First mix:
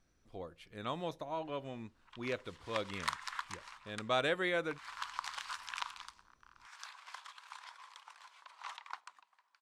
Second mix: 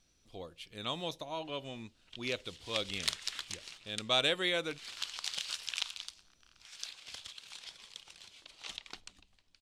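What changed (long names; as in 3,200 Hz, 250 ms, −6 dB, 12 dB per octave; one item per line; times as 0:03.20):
background: remove high-pass with resonance 1,000 Hz, resonance Q 4.8
master: add high shelf with overshoot 2,300 Hz +8.5 dB, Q 1.5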